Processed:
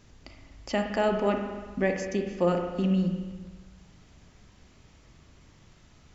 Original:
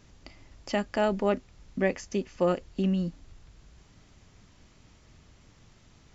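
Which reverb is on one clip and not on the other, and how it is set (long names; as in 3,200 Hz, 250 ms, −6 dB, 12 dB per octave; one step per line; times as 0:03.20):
spring reverb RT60 1.4 s, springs 40/58 ms, chirp 35 ms, DRR 4 dB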